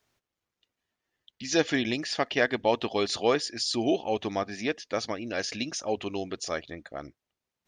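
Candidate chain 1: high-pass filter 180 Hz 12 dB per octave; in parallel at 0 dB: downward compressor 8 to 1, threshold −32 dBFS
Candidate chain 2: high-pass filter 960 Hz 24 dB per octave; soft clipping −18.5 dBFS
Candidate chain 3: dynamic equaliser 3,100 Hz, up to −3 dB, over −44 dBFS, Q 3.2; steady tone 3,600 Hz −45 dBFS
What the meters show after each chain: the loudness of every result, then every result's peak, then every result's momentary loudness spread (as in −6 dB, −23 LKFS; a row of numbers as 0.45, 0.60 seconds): −26.5, −34.0, −29.0 LKFS; −7.5, −19.0, −10.0 dBFS; 9, 12, 19 LU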